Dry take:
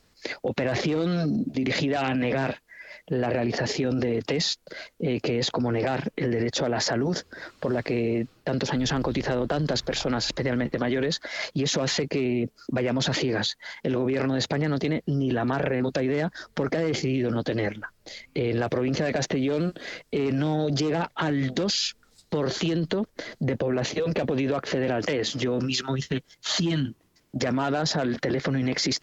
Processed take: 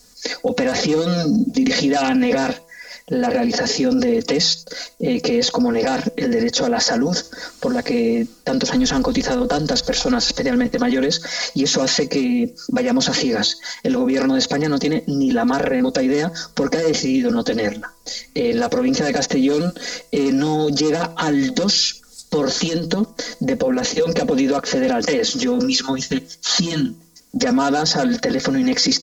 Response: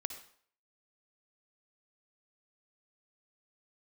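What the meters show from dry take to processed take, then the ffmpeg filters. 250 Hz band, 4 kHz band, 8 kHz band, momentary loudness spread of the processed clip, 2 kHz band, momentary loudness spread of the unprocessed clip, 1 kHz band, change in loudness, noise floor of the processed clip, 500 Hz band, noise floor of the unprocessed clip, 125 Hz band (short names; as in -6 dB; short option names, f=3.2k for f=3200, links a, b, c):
+9.0 dB, +9.0 dB, n/a, 7 LU, +6.0 dB, 6 LU, +8.0 dB, +7.5 dB, -48 dBFS, +7.0 dB, -63 dBFS, 0.0 dB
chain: -filter_complex "[0:a]highshelf=f=4.1k:t=q:w=1.5:g=10.5,aecho=1:1:4.1:0.94,bandreject=f=165.5:t=h:w=4,bandreject=f=331:t=h:w=4,bandreject=f=496.5:t=h:w=4,bandreject=f=662:t=h:w=4,bandreject=f=827.5:t=h:w=4,bandreject=f=993:t=h:w=4,bandreject=f=1.1585k:t=h:w=4,asplit=2[a][b];[1:a]atrim=start_sample=2205,atrim=end_sample=4410[c];[b][c]afir=irnorm=-1:irlink=0,volume=-12.5dB[d];[a][d]amix=inputs=2:normalize=0,acrossover=split=4100[e][f];[f]acompressor=threshold=-29dB:ratio=4:attack=1:release=60[g];[e][g]amix=inputs=2:normalize=0,volume=3dB"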